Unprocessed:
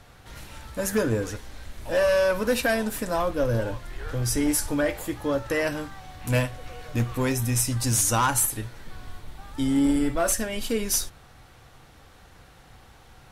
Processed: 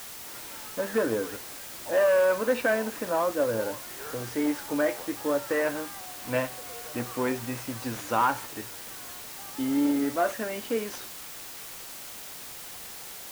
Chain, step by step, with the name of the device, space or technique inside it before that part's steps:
wax cylinder (band-pass filter 280–2,000 Hz; tape wow and flutter; white noise bed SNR 12 dB)

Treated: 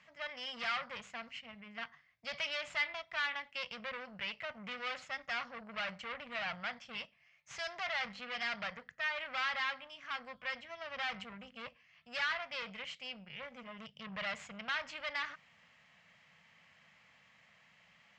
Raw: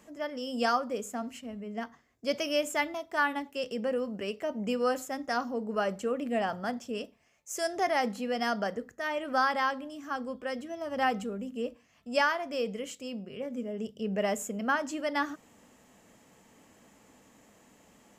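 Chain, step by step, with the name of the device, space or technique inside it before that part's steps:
scooped metal amplifier (tube saturation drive 35 dB, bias 0.8; loudspeaker in its box 110–4,000 Hz, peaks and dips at 160 Hz +9 dB, 410 Hz −9 dB, 870 Hz −4 dB, 2,100 Hz +5 dB, 3,700 Hz −3 dB; guitar amp tone stack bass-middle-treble 10-0-10)
level +10 dB

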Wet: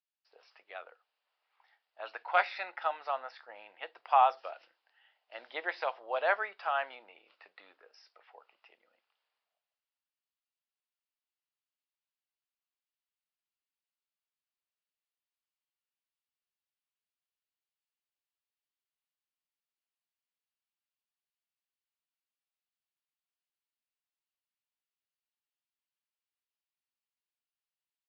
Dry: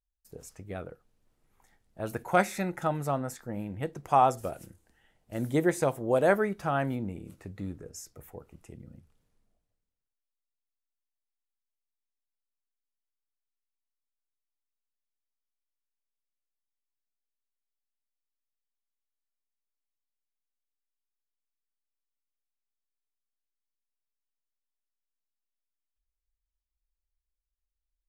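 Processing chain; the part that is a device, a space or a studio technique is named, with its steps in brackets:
musical greeting card (downsampling to 11,025 Hz; high-pass filter 720 Hz 24 dB per octave; parametric band 2,800 Hz +5.5 dB 0.3 octaves)

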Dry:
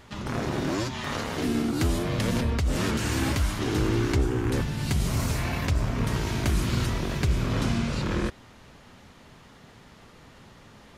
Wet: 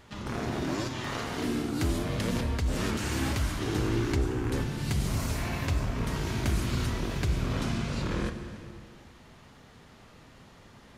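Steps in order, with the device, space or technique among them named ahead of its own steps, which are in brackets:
compressed reverb return (on a send at −4.5 dB: convolution reverb RT60 1.7 s, pre-delay 28 ms + downward compressor, threshold −25 dBFS, peak gain reduction 8.5 dB)
on the sum: level −4 dB

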